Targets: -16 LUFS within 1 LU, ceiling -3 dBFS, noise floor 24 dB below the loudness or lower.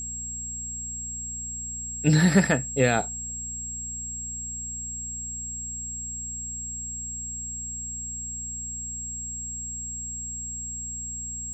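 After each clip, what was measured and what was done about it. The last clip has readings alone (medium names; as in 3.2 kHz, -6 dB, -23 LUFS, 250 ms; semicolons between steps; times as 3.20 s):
hum 60 Hz; highest harmonic 240 Hz; hum level -40 dBFS; steady tone 7.6 kHz; tone level -32 dBFS; loudness -28.5 LUFS; peak level -6.5 dBFS; loudness target -16.0 LUFS
-> de-hum 60 Hz, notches 4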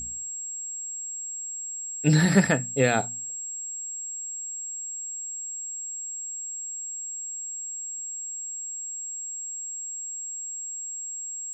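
hum not found; steady tone 7.6 kHz; tone level -32 dBFS
-> band-stop 7.6 kHz, Q 30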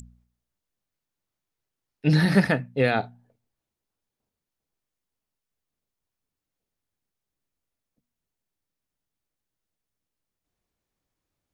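steady tone not found; loudness -23.0 LUFS; peak level -5.5 dBFS; loudness target -16.0 LUFS
-> trim +7 dB; peak limiter -3 dBFS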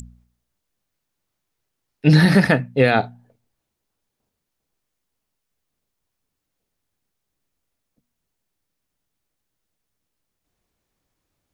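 loudness -16.5 LUFS; peak level -3.0 dBFS; noise floor -80 dBFS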